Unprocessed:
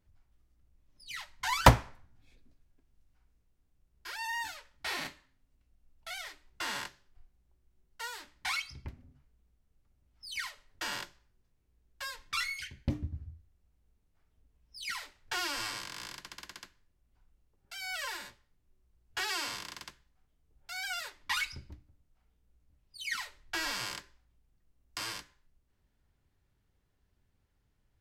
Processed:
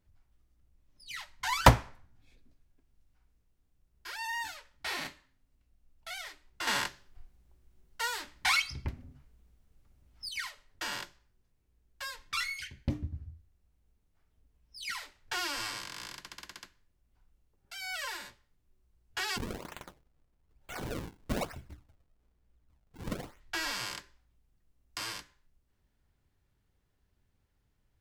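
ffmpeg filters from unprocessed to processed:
-filter_complex "[0:a]asettb=1/sr,asplit=3[s0][s1][s2];[s0]atrim=end=6.674[s3];[s1]atrim=start=6.67:end=10.29,asetpts=PTS-STARTPTS,afade=t=in:d=0.004:c=qsin,afade=t=out:st=3.616:d=0.004:c=qsin,acontrast=80[s4];[s2]atrim=start=10.286[s5];[s3][s4]acrossfade=d=0.004:c1=hsin:c2=qsin[s6];[s6][s5]acrossfade=d=0.004:c1=qsin:c2=hsin,asplit=3[s7][s8][s9];[s7]afade=t=out:st=19.36:d=0.02[s10];[s8]acrusher=samples=41:mix=1:aa=0.000001:lfo=1:lforange=65.6:lforate=1.1,afade=t=in:st=19.36:d=0.02,afade=t=out:st=23.39:d=0.02[s11];[s9]afade=t=in:st=23.39:d=0.02[s12];[s10][s11][s12]amix=inputs=3:normalize=0"

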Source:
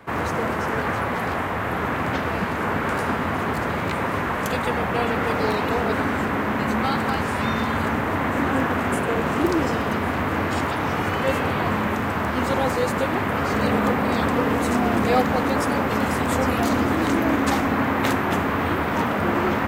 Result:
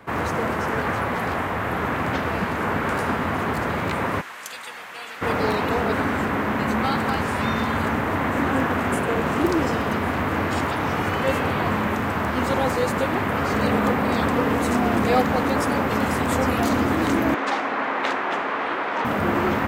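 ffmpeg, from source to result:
-filter_complex "[0:a]asplit=3[s0][s1][s2];[s0]afade=t=out:st=4.2:d=0.02[s3];[s1]bandpass=f=7000:t=q:w=0.64,afade=t=in:st=4.2:d=0.02,afade=t=out:st=5.21:d=0.02[s4];[s2]afade=t=in:st=5.21:d=0.02[s5];[s3][s4][s5]amix=inputs=3:normalize=0,asettb=1/sr,asplit=3[s6][s7][s8];[s6]atrim=end=17.344[s9];[s7]atrim=start=17.34:end=19.05,asetpts=PTS-STARTPTS,afade=t=in:d=0.004:c=qsin,afade=t=out:st=1.706:d=0.004:c=qsin,highpass=460,lowpass=4500[s10];[s8]atrim=start=19.046[s11];[s9][s10]acrossfade=d=0.004:c1=hsin:c2=qsin[s12];[s12][s11]acrossfade=d=0.004:c1=qsin:c2=hsin"

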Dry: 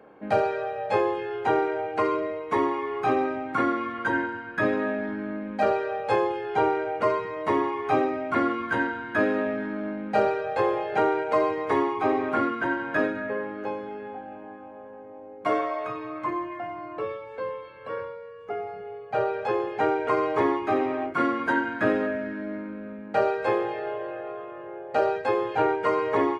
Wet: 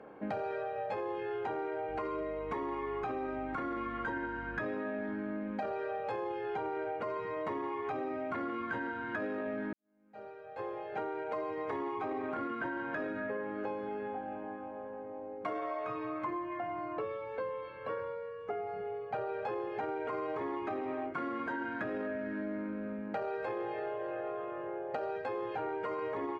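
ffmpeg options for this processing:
-filter_complex "[0:a]asettb=1/sr,asplit=3[s0][s1][s2];[s0]atrim=end=1.894[s3];[s1]atrim=start=1.89:end=4.63,asetpts=PTS-STARTPTS,afade=t=in:d=0.004:c=qsin,afade=t=out:st=2.736:d=0.004:c=qsin,aeval=exprs='val(0)+0.00562*(sin(2*PI*50*n/s)+sin(2*PI*2*50*n/s)/2+sin(2*PI*3*50*n/s)/3+sin(2*PI*4*50*n/s)/4+sin(2*PI*5*50*n/s)/5)':c=same[s4];[s2]atrim=start=4.626[s5];[s3][s4]acrossfade=d=0.004:c1=hsin:c2=qsin[s6];[s6][s5]acrossfade=d=0.004:c1=qsin:c2=hsin,asplit=2[s7][s8];[s7]atrim=end=9.73,asetpts=PTS-STARTPTS,afade=t=out:st=9.726:d=0.004:c=hsin[s9];[s8]atrim=start=9.73,asetpts=PTS-STARTPTS,afade=t=in:d=2.2:c=qua[s10];[s9][s10]concat=n=2:v=0:a=1,aemphasis=mode=reproduction:type=50kf,alimiter=limit=0.0891:level=0:latency=1:release=15,acompressor=threshold=0.02:ratio=6"

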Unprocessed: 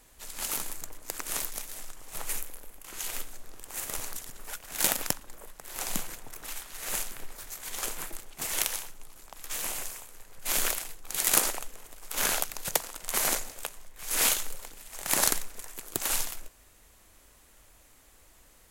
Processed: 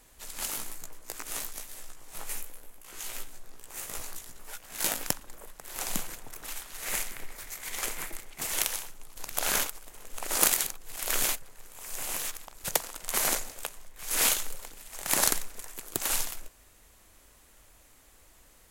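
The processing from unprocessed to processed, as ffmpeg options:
-filter_complex "[0:a]asplit=3[s0][s1][s2];[s0]afade=t=out:st=0.5:d=0.02[s3];[s1]flanger=delay=16:depth=2.2:speed=1.1,afade=t=in:st=0.5:d=0.02,afade=t=out:st=5.06:d=0.02[s4];[s2]afade=t=in:st=5.06:d=0.02[s5];[s3][s4][s5]amix=inputs=3:normalize=0,asettb=1/sr,asplit=3[s6][s7][s8];[s6]atrim=end=6.854[s9];[s7]atrim=start=6.85:end=8.41,asetpts=PTS-STARTPTS,afade=t=in:d=0.004:c=qsin,afade=t=out:st=1.556:d=0.004:c=qsin,equalizer=f=2100:w=3.4:g=7[s10];[s8]atrim=start=8.406[s11];[s9][s10]acrossfade=d=0.004:c1=hsin:c2=qsin[s12];[s12][s11]acrossfade=d=0.004:c1=qsin:c2=hsin,asplit=3[s13][s14][s15];[s13]atrim=end=9.172[s16];[s14]atrim=start=9.168:end=12.642,asetpts=PTS-STARTPTS,areverse[s17];[s15]atrim=start=12.638[s18];[s16][s17]acrossfade=d=0.004:c1=hsin:c2=hsin[s19];[s19][s18]acrossfade=d=0.004:c1=hsin:c2=hsin"

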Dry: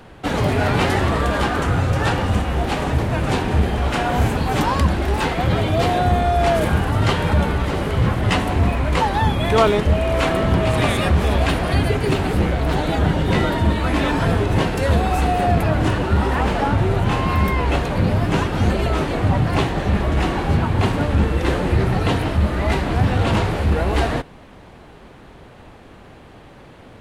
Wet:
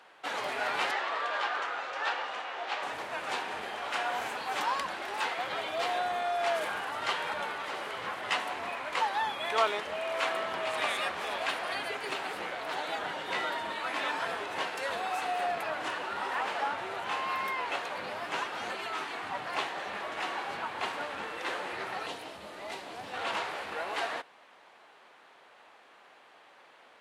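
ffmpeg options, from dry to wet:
-filter_complex "[0:a]asettb=1/sr,asplit=3[s0][s1][s2];[s0]atrim=end=0.914[s3];[s1]atrim=start=0.91:end=2.83,asetpts=PTS-STARTPTS,afade=t=in:d=0.004:c=qsin,afade=t=out:st=1.916:d=0.004:c=qsin,acrossover=split=320 6300:gain=0.126 1 0.0891[s4][s5][s6];[s4][s5][s6]amix=inputs=3:normalize=0[s7];[s2]atrim=start=2.826[s8];[s3][s7]acrossfade=d=0.004:c1=hsin:c2=qsin[s9];[s9][s8]acrossfade=d=0.004:c1=qsin:c2=hsin,asettb=1/sr,asplit=3[s10][s11][s12];[s10]atrim=end=18.754[s13];[s11]atrim=start=18.75:end=19.34,asetpts=PTS-STARTPTS,afade=t=in:d=0.004:c=qsin,afade=t=out:st=0.586:d=0.004:c=qsin,equalizer=f=560:w=4.4:g=-12.5[s14];[s12]atrim=start=19.336[s15];[s13][s14]acrossfade=d=0.004:c1=hsin:c2=qsin[s16];[s16][s15]acrossfade=d=0.004:c1=qsin:c2=hsin,asettb=1/sr,asplit=3[s17][s18][s19];[s17]atrim=end=22.064[s20];[s18]atrim=start=22.06:end=23.14,asetpts=PTS-STARTPTS,afade=t=in:d=0.004:c=qsin,afade=t=out:st=1.076:d=0.004:c=qsin,equalizer=f=1500:w=0.62:g=-10.5[s21];[s19]atrim=start=23.136[s22];[s20][s21]acrossfade=d=0.004:c1=hsin:c2=qsin[s23];[s23][s22]acrossfade=d=0.004:c1=qsin:c2=hsin,highpass=820,highshelf=f=8400:g=-8.5,volume=0.447"

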